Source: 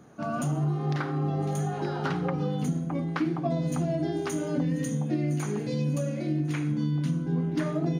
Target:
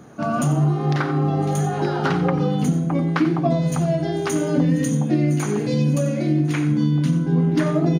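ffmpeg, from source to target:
ffmpeg -i in.wav -filter_complex "[0:a]asettb=1/sr,asplit=3[link_01][link_02][link_03];[link_01]atrim=end=3.534[link_04];[link_02]atrim=start=3.53:end=4.3,asetpts=PTS-STARTPTS,afade=type=in:duration=0.004:curve=qsin,afade=type=out:start_time=0.766:duration=0.004:curve=qsin,equalizer=frequency=280:width=3.6:gain=-13[link_05];[link_03]atrim=start=4.296[link_06];[link_04][link_05]acrossfade=duration=0.004:curve1=hsin:curve2=qsin[link_07];[link_07][link_06]acrossfade=duration=0.004:curve1=qsin:curve2=hsin,aecho=1:1:90:0.2,volume=8.5dB" out.wav

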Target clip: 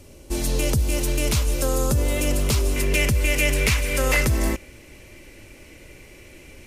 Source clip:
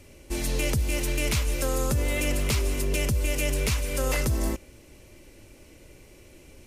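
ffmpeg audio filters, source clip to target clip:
ffmpeg -i in.wav -af "asetnsamples=nb_out_samples=441:pad=0,asendcmd='2.76 equalizer g 7',equalizer=frequency=2100:width=1.5:gain=-6,volume=4.5dB" out.wav

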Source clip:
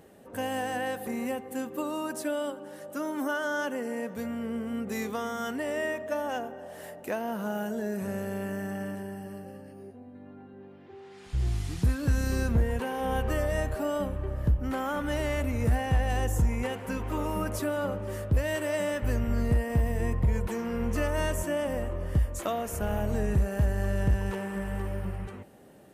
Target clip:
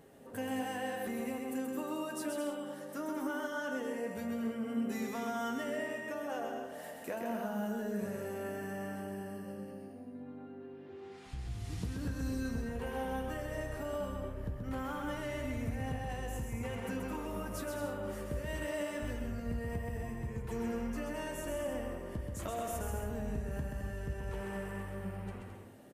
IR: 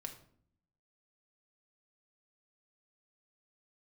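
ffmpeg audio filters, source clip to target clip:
-filter_complex "[0:a]acompressor=threshold=-32dB:ratio=6,flanger=delay=7.1:depth=7:regen=-45:speed=0.19:shape=triangular,aecho=1:1:130|214.5|269.4|305.1|328.3:0.631|0.398|0.251|0.158|0.1,asplit=2[link_01][link_02];[1:a]atrim=start_sample=2205[link_03];[link_02][link_03]afir=irnorm=-1:irlink=0,volume=-2.5dB[link_04];[link_01][link_04]amix=inputs=2:normalize=0,volume=-3.5dB"

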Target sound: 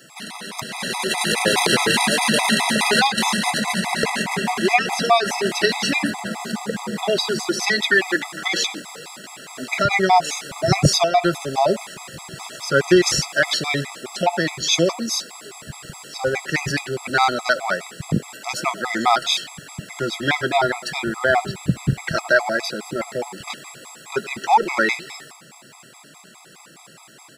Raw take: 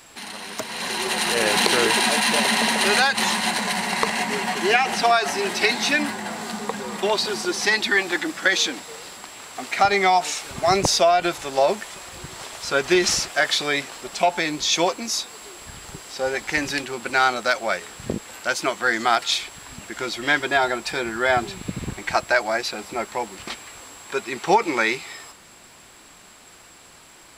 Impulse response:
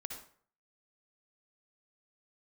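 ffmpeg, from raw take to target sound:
-filter_complex "[0:a]equalizer=frequency=140:width=1.6:gain=13,acrossover=split=150|5300[link_01][link_02][link_03];[link_01]aeval=exprs='sgn(val(0))*max(abs(val(0))-0.00708,0)':channel_layout=same[link_04];[link_04][link_02][link_03]amix=inputs=3:normalize=0,asplit=2[link_05][link_06];[link_06]adelay=100,highpass=300,lowpass=3400,asoftclip=type=hard:threshold=-11.5dB,volume=-17dB[link_07];[link_05][link_07]amix=inputs=2:normalize=0,afftfilt=real='re*gt(sin(2*PI*4.8*pts/sr)*(1-2*mod(floor(b*sr/1024/660),2)),0)':imag='im*gt(sin(2*PI*4.8*pts/sr)*(1-2*mod(floor(b*sr/1024/660),2)),0)':win_size=1024:overlap=0.75,volume=4dB"

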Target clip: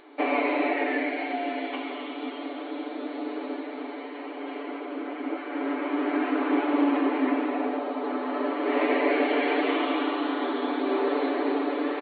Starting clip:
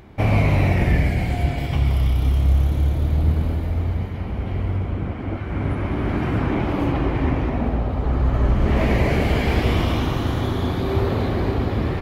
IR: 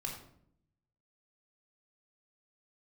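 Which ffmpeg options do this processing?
-filter_complex "[0:a]aecho=1:1:6.9:0.8,acrossover=split=3400[link_01][link_02];[link_02]acompressor=threshold=-52dB:ratio=4:attack=1:release=60[link_03];[link_01][link_03]amix=inputs=2:normalize=0,afftfilt=real='re*between(b*sr/4096,250,4500)':imag='im*between(b*sr/4096,250,4500)':win_size=4096:overlap=0.75,volume=-2.5dB"

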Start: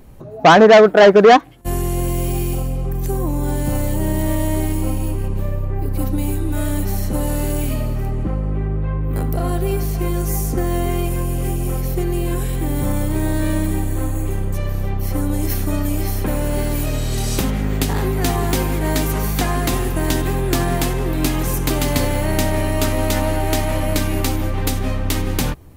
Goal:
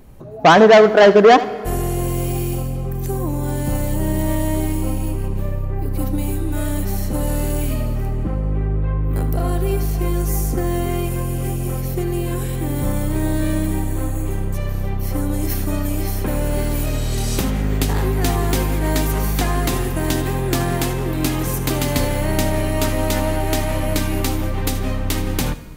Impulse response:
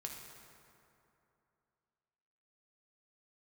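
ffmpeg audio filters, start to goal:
-filter_complex "[0:a]asplit=2[link_01][link_02];[1:a]atrim=start_sample=2205,adelay=77[link_03];[link_02][link_03]afir=irnorm=-1:irlink=0,volume=-11dB[link_04];[link_01][link_04]amix=inputs=2:normalize=0,volume=-1dB"

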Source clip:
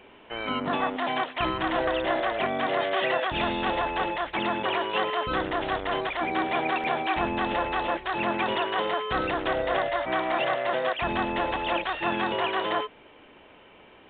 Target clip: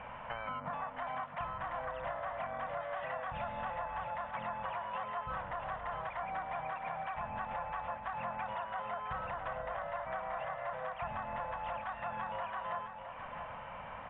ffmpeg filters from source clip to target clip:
ffmpeg -i in.wav -filter_complex "[0:a]firequalizer=gain_entry='entry(160,0);entry(360,-29);entry(530,-4);entry(1000,2);entry(4800,-28)':delay=0.05:min_phase=1,acompressor=threshold=-49dB:ratio=6,asplit=2[link_01][link_02];[link_02]aecho=0:1:664|1328|1992|2656|3320|3984:0.376|0.192|0.0978|0.0499|0.0254|0.013[link_03];[link_01][link_03]amix=inputs=2:normalize=0,volume=9.5dB" out.wav

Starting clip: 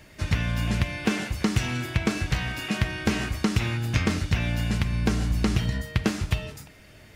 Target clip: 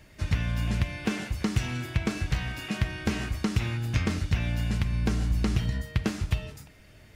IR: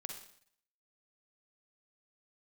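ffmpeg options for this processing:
-af "lowshelf=frequency=110:gain=6,volume=-5dB"

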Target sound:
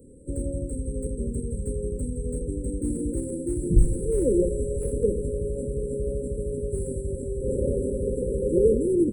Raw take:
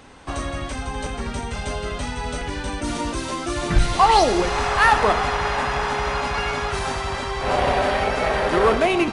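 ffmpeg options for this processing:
ffmpeg -i in.wav -filter_complex "[0:a]afftfilt=real='re*(1-between(b*sr/4096,570,7600))':imag='im*(1-between(b*sr/4096,570,7600))':win_size=4096:overlap=0.75,acrossover=split=170|910|3500[link_01][link_02][link_03][link_04];[link_04]aeval=exprs='clip(val(0),-1,0.0106)':channel_layout=same[link_05];[link_01][link_02][link_03][link_05]amix=inputs=4:normalize=0" out.wav

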